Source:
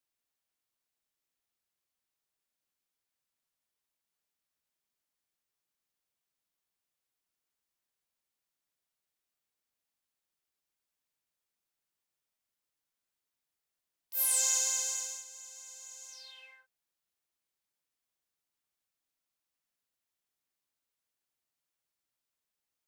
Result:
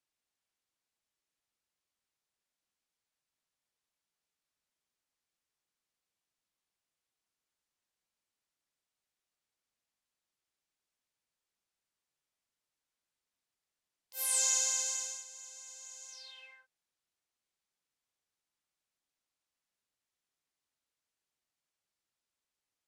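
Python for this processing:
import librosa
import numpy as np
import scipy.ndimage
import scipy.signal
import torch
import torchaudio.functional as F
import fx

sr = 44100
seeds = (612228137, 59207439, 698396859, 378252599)

y = scipy.signal.sosfilt(scipy.signal.butter(2, 9400.0, 'lowpass', fs=sr, output='sos'), x)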